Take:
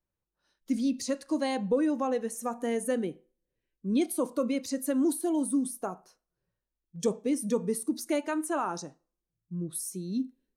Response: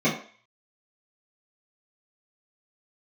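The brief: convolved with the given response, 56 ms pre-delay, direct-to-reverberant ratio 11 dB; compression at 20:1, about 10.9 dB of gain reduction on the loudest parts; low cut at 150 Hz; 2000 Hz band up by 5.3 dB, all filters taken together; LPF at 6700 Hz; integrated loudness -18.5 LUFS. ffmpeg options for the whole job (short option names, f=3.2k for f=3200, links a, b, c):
-filter_complex "[0:a]highpass=150,lowpass=6.7k,equalizer=f=2k:t=o:g=6.5,acompressor=threshold=-33dB:ratio=20,asplit=2[a][b];[1:a]atrim=start_sample=2205,adelay=56[c];[b][c]afir=irnorm=-1:irlink=0,volume=-26.5dB[d];[a][d]amix=inputs=2:normalize=0,volume=19.5dB"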